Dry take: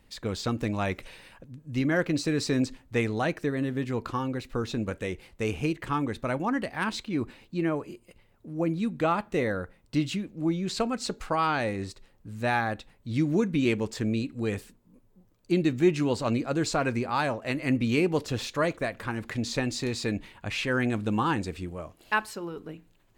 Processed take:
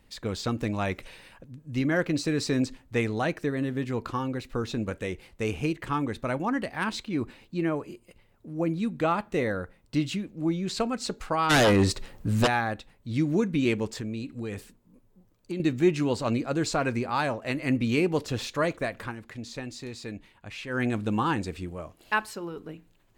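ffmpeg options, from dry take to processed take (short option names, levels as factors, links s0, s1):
-filter_complex "[0:a]asplit=3[s0][s1][s2];[s0]afade=t=out:st=11.49:d=0.02[s3];[s1]aeval=exprs='0.158*sin(PI/2*3.55*val(0)/0.158)':c=same,afade=t=in:st=11.49:d=0.02,afade=t=out:st=12.46:d=0.02[s4];[s2]afade=t=in:st=12.46:d=0.02[s5];[s3][s4][s5]amix=inputs=3:normalize=0,asettb=1/sr,asplit=3[s6][s7][s8];[s6]atrim=end=13.974[s9];[s7]atrim=start=13.97:end=15.6,asetpts=PTS-STARTPTS,afade=t=in:d=0.004:c=qsin,afade=t=out:st=1.626:d=0.004:c=qsin,acompressor=threshold=0.0282:ratio=3:attack=3.2:release=140:knee=1:detection=peak[s10];[s8]atrim=start=15.596[s11];[s9][s10]acrossfade=d=0.004:c1=hsin:c2=qsin[s12];[s12][s11]acrossfade=d=0.004:c1=qsin:c2=hsin,asplit=3[s13][s14][s15];[s13]atrim=end=19.16,asetpts=PTS-STARTPTS,afade=t=out:st=19.03:d=0.13:silence=0.375837[s16];[s14]atrim=start=19.16:end=20.69,asetpts=PTS-STARTPTS,volume=0.376[s17];[s15]atrim=start=20.69,asetpts=PTS-STARTPTS,afade=t=in:d=0.13:silence=0.375837[s18];[s16][s17][s18]concat=n=3:v=0:a=1"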